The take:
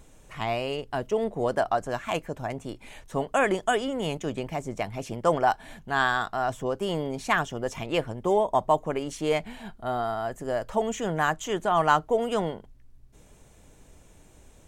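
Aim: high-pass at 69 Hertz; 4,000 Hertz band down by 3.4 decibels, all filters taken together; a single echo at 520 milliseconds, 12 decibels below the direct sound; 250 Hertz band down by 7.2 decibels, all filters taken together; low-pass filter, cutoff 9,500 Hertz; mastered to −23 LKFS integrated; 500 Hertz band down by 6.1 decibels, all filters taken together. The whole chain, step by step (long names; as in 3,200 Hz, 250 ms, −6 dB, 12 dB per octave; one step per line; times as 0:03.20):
high-pass filter 69 Hz
low-pass filter 9,500 Hz
parametric band 250 Hz −8 dB
parametric band 500 Hz −6 dB
parametric band 4,000 Hz −5 dB
single-tap delay 520 ms −12 dB
level +8 dB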